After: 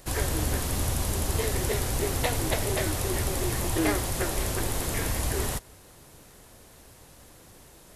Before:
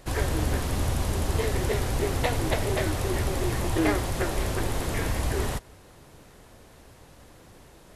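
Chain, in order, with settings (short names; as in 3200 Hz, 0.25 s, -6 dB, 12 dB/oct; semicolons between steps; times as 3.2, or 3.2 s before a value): high shelf 5600 Hz +11 dB; gain -2 dB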